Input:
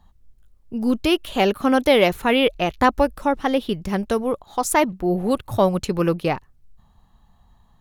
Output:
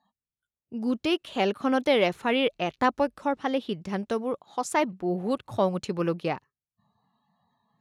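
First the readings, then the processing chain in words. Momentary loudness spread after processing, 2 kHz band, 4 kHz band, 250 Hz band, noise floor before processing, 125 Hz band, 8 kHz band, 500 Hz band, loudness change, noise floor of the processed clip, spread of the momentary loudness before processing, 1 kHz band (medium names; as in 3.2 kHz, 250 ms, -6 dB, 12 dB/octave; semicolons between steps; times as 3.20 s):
9 LU, -6.5 dB, -6.5 dB, -7.0 dB, -57 dBFS, -8.0 dB, -10.5 dB, -6.5 dB, -6.5 dB, under -85 dBFS, 8 LU, -6.5 dB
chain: spectral noise reduction 21 dB; band-pass 130–7500 Hz; trim -6.5 dB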